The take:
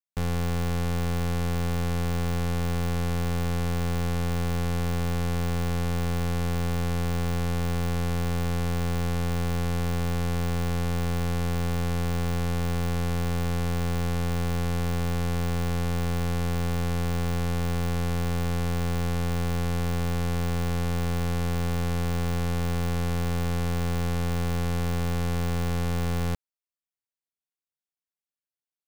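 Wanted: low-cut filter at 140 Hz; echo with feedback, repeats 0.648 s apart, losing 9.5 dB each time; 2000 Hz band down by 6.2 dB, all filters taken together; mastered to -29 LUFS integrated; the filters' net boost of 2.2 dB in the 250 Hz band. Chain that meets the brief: HPF 140 Hz; bell 250 Hz +5.5 dB; bell 2000 Hz -8.5 dB; feedback echo 0.648 s, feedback 33%, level -9.5 dB; gain +0.5 dB

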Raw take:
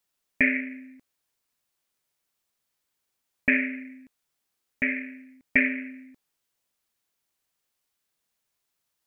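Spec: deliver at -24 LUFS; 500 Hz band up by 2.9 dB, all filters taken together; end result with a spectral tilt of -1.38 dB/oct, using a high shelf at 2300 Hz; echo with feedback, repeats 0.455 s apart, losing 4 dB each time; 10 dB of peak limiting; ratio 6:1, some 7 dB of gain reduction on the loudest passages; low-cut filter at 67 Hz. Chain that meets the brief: HPF 67 Hz; bell 500 Hz +4 dB; high shelf 2300 Hz -7 dB; compressor 6:1, threshold -26 dBFS; limiter -23 dBFS; feedback echo 0.455 s, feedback 63%, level -4 dB; gain +13.5 dB

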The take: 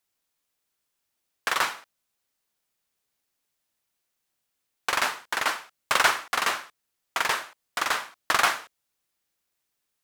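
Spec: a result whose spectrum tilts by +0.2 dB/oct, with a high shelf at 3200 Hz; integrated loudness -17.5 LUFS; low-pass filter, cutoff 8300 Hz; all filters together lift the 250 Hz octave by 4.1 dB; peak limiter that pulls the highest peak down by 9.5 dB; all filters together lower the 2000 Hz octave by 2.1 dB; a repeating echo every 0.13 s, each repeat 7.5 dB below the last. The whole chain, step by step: LPF 8300 Hz; bell 250 Hz +5.5 dB; bell 2000 Hz -4.5 dB; high shelf 3200 Hz +5 dB; limiter -15.5 dBFS; feedback echo 0.13 s, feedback 42%, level -7.5 dB; gain +12 dB

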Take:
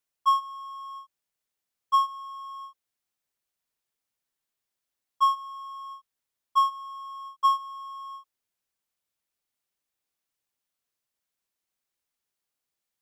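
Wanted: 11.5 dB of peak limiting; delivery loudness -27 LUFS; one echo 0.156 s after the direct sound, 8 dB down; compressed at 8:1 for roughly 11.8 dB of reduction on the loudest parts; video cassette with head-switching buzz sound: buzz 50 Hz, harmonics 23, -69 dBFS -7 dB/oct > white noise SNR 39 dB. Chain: compressor 8:1, threshold -29 dBFS; limiter -33 dBFS; echo 0.156 s -8 dB; buzz 50 Hz, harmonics 23, -69 dBFS -7 dB/oct; white noise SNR 39 dB; gain +11.5 dB

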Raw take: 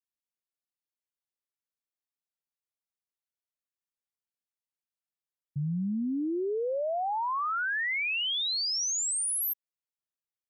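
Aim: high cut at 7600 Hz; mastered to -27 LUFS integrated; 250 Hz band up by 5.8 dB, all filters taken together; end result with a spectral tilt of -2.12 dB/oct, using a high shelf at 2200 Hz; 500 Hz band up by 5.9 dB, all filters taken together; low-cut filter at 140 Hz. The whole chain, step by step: HPF 140 Hz; LPF 7600 Hz; bell 250 Hz +6.5 dB; bell 500 Hz +5 dB; high shelf 2200 Hz +8 dB; gain -3 dB

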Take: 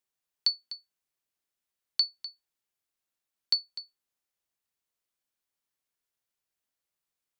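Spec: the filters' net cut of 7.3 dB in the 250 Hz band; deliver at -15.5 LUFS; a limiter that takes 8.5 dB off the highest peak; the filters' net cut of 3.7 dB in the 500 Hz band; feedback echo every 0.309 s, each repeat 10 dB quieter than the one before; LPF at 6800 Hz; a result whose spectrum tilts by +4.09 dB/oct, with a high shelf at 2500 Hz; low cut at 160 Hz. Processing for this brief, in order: HPF 160 Hz; LPF 6800 Hz; bell 250 Hz -8 dB; bell 500 Hz -3 dB; high shelf 2500 Hz +6 dB; limiter -18.5 dBFS; feedback echo 0.309 s, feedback 32%, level -10 dB; gain +17.5 dB

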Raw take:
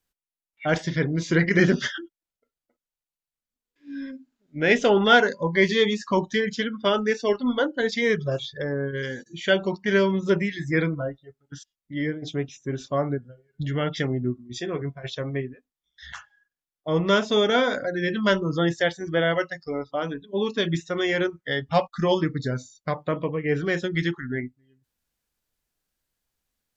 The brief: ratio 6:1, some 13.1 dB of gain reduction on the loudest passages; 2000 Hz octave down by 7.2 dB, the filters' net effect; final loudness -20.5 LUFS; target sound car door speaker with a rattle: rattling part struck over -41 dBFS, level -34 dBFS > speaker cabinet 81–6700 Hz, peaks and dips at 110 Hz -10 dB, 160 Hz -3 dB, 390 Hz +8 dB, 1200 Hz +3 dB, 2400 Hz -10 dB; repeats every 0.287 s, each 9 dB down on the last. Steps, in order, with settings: bell 2000 Hz -8.5 dB; compressor 6:1, threshold -30 dBFS; feedback echo 0.287 s, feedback 35%, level -9 dB; rattling part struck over -41 dBFS, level -34 dBFS; speaker cabinet 81–6700 Hz, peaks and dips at 110 Hz -10 dB, 160 Hz -3 dB, 390 Hz +8 dB, 1200 Hz +3 dB, 2400 Hz -10 dB; gain +11.5 dB

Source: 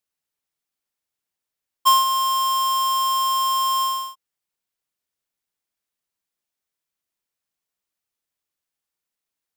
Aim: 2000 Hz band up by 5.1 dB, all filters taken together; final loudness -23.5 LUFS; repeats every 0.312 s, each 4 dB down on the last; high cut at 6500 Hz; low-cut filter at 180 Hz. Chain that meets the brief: HPF 180 Hz; LPF 6500 Hz; bell 2000 Hz +7.5 dB; feedback echo 0.312 s, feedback 63%, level -4 dB; gain -5 dB

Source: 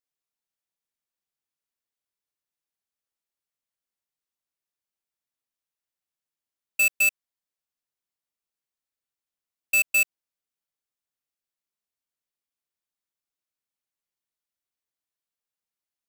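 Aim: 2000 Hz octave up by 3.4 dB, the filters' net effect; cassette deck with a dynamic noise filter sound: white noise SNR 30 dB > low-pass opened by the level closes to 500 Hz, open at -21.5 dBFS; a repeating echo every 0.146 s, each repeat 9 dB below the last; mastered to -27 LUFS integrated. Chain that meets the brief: bell 2000 Hz +5.5 dB; feedback echo 0.146 s, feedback 35%, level -9 dB; white noise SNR 30 dB; low-pass opened by the level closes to 500 Hz, open at -21.5 dBFS; gain -8.5 dB

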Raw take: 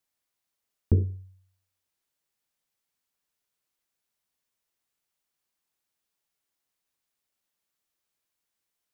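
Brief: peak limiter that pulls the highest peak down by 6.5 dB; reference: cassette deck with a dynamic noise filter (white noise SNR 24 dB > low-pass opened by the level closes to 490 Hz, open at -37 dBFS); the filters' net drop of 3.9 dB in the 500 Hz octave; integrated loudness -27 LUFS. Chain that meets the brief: bell 500 Hz -5.5 dB; limiter -17 dBFS; white noise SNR 24 dB; low-pass opened by the level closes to 490 Hz, open at -37 dBFS; gain +4 dB

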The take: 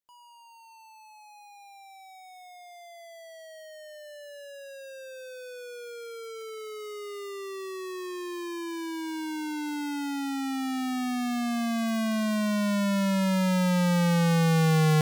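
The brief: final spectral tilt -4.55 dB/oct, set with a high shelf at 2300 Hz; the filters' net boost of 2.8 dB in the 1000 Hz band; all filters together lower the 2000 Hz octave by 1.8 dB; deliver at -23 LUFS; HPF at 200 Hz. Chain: HPF 200 Hz; bell 1000 Hz +4 dB; bell 2000 Hz -8 dB; high shelf 2300 Hz +8 dB; gain +6.5 dB

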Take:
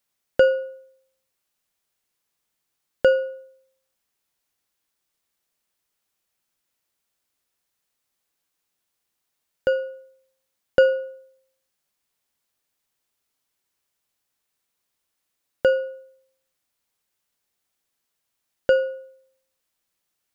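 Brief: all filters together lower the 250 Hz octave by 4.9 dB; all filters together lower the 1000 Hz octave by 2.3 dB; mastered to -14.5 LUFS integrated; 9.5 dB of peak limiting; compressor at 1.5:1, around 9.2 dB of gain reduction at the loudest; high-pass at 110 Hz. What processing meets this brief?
HPF 110 Hz; bell 250 Hz -6.5 dB; bell 1000 Hz -4.5 dB; compressor 1.5:1, threshold -40 dBFS; gain +22.5 dB; limiter -1 dBFS

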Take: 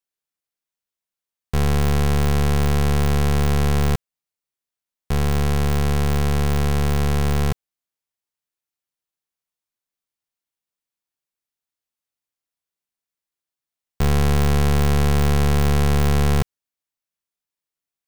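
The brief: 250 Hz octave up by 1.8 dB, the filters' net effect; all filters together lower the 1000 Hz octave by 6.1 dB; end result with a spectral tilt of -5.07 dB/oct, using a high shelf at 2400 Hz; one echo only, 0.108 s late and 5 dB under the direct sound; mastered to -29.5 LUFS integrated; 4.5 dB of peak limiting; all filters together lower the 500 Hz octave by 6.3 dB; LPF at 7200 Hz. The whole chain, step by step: LPF 7200 Hz; bell 250 Hz +4.5 dB; bell 500 Hz -8.5 dB; bell 1000 Hz -7 dB; high shelf 2400 Hz +7.5 dB; limiter -15 dBFS; echo 0.108 s -5 dB; gain -5.5 dB

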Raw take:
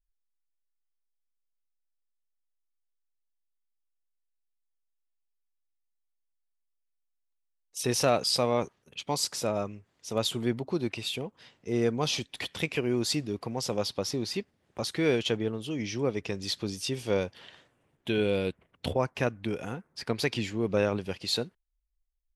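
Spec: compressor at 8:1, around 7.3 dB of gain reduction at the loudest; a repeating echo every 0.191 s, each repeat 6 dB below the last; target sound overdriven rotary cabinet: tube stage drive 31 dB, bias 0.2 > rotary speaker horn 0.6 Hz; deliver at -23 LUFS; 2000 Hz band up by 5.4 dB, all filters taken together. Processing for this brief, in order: bell 2000 Hz +7 dB; compressor 8:1, threshold -27 dBFS; feedback echo 0.191 s, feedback 50%, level -6 dB; tube stage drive 31 dB, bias 0.2; rotary speaker horn 0.6 Hz; gain +15.5 dB

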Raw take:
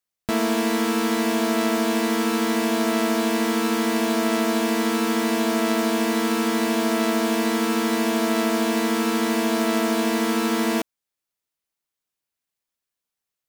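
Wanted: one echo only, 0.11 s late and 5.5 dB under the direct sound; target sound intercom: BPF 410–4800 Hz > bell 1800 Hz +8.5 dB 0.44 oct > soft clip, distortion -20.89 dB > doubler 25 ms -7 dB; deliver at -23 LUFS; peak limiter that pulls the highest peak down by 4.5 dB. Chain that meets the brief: limiter -16.5 dBFS; BPF 410–4800 Hz; bell 1800 Hz +8.5 dB 0.44 oct; echo 0.11 s -5.5 dB; soft clip -14.5 dBFS; doubler 25 ms -7 dB; gain +2.5 dB

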